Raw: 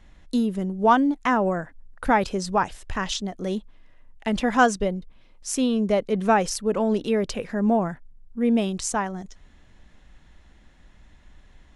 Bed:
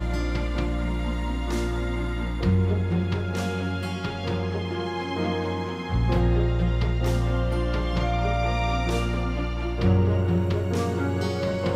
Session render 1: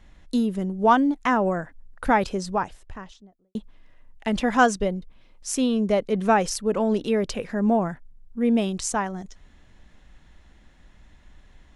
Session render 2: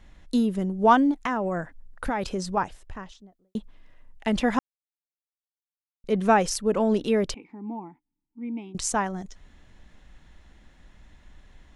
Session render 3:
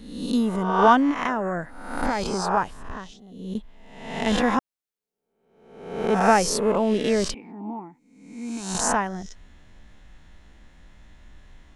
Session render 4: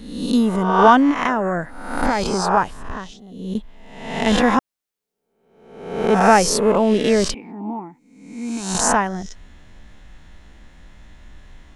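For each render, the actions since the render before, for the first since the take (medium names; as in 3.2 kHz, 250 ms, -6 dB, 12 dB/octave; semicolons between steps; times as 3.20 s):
2.12–3.55 s: studio fade out
1.11–2.57 s: compression, threshold -23 dBFS; 4.59–6.04 s: mute; 7.34–8.75 s: vowel filter u
reverse spectral sustain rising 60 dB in 0.84 s
trim +5.5 dB; peak limiter -1 dBFS, peak gain reduction 2 dB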